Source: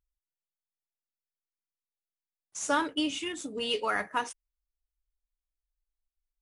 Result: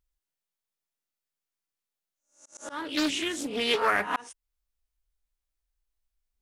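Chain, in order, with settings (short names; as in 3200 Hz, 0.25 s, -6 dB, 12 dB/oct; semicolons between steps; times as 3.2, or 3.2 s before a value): spectral swells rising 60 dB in 0.38 s; auto swell 0.362 s; Doppler distortion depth 0.38 ms; gain +3.5 dB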